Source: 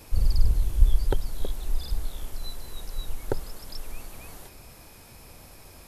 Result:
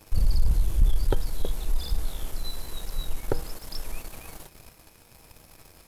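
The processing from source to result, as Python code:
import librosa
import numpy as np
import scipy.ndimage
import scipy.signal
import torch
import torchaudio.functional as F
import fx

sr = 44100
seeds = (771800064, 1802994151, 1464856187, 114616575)

y = fx.comb_fb(x, sr, f0_hz=160.0, decay_s=0.4, harmonics='all', damping=0.0, mix_pct=60)
y = fx.leveller(y, sr, passes=2)
y = y * librosa.db_to_amplitude(1.5)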